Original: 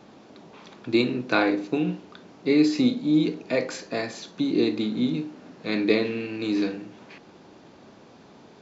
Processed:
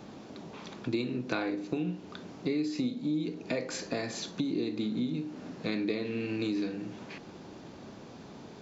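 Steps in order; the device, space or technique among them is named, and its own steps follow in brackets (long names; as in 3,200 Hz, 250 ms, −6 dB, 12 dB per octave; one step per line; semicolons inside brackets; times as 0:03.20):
ASMR close-microphone chain (low-shelf EQ 240 Hz +7 dB; downward compressor 5 to 1, threshold −30 dBFS, peak gain reduction 16 dB; high-shelf EQ 6,200 Hz +6 dB)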